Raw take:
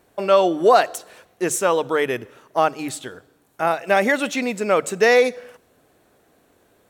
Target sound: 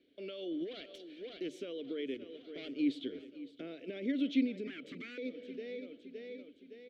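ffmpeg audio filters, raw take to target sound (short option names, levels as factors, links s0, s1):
-filter_complex "[0:a]asettb=1/sr,asplit=3[s0][s1][s2];[s0]atrim=end=0.524[s3];[s1]atrim=start=0.52:end=1.49,asetpts=PTS-STARTPTS,afade=t=in:d=0.004:c=qsin,afade=t=out:st=0.966:d=0.004:c=qsin,aeval=exprs='0.708*(cos(1*acos(clip(val(0)/0.708,-1,1)))-cos(1*PI/2))+0.1*(cos(6*acos(clip(val(0)/0.708,-1,1)))-cos(6*PI/2))':c=same[s4];[s2]atrim=start=1.486[s5];[s3][s4]acrossfade=d=0.004:c1=hsin:c2=qsin[s6];[s6][s5]acrossfade=d=0.004:c1=qsin:c2=hsin,acrossover=split=560|1600[s7][s8][s9];[s7]dynaudnorm=f=670:g=5:m=3.76[s10];[s10][s8][s9]amix=inputs=3:normalize=0,asettb=1/sr,asplit=3[s11][s12][s13];[s11]atrim=end=2.144[s14];[s12]atrim=start=2.14:end=2.76,asetpts=PTS-STARTPTS,afade=t=in:d=0.004:c=qsin,afade=t=out:st=0.616:d=0.004:c=qsin,aeval=exprs='(tanh(12.6*val(0)+0.45)-tanh(0.45))/12.6':c=same[s15];[s13]atrim=start=2.756[s16];[s14][s15]acrossfade=d=0.004:c1=hsin:c2=qsin[s17];[s17][s16]acrossfade=d=0.004:c1=qsin:c2=hsin,equalizer=f=125:t=o:w=1:g=-10,equalizer=f=250:t=o:w=1:g=-10,equalizer=f=500:t=o:w=1:g=5,equalizer=f=1000:t=o:w=1:g=-10,equalizer=f=2000:t=o:w=1:g=-10,equalizer=f=4000:t=o:w=1:g=8,equalizer=f=8000:t=o:w=1:g=-10,asplit=2[s18][s19];[s19]aecho=0:1:564|1128|1692|2256:0.112|0.0572|0.0292|0.0149[s20];[s18][s20]amix=inputs=2:normalize=0,alimiter=limit=0.0668:level=0:latency=1:release=239,asettb=1/sr,asplit=3[s21][s22][s23];[s21]atrim=end=4.674[s24];[s22]atrim=start=4.67:end=5.18,asetpts=PTS-STARTPTS,afade=t=in:d=0.004:c=qsin,afade=t=out:st=0.506:d=0.004:c=qsin,aeval=exprs='0.02*(abs(mod(val(0)/0.02+3,4)-2)-1)':c=same[s25];[s23]atrim=start=5.176[s26];[s24][s25]acrossfade=d=0.004:c1=hsin:c2=qsin[s27];[s27][s26]acrossfade=d=0.004:c1=qsin:c2=hsin,asplit=3[s28][s29][s30];[s28]bandpass=f=270:t=q:w=8,volume=1[s31];[s29]bandpass=f=2290:t=q:w=8,volume=0.501[s32];[s30]bandpass=f=3010:t=q:w=8,volume=0.355[s33];[s31][s32][s33]amix=inputs=3:normalize=0,highshelf=f=4800:g=-10,volume=2.82"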